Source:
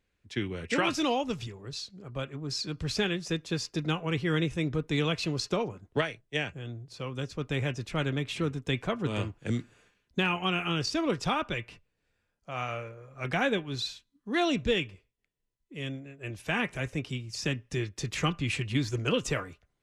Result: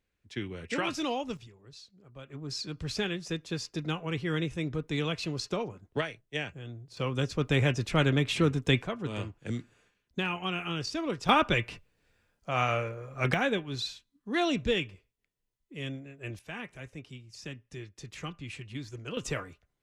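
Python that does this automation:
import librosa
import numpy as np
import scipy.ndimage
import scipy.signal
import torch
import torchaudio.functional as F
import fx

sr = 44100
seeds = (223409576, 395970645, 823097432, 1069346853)

y = fx.gain(x, sr, db=fx.steps((0.0, -4.0), (1.37, -12.0), (2.3, -3.0), (6.97, 5.0), (8.83, -4.0), (11.29, 6.5), (13.34, -1.0), (16.39, -11.0), (19.17, -3.0)))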